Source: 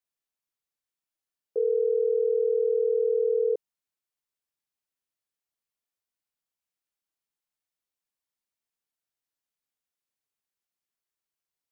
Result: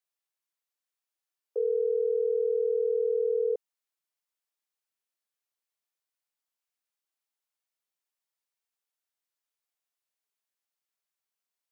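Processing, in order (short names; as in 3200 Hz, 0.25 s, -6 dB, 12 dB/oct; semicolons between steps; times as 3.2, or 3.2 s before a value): HPF 440 Hz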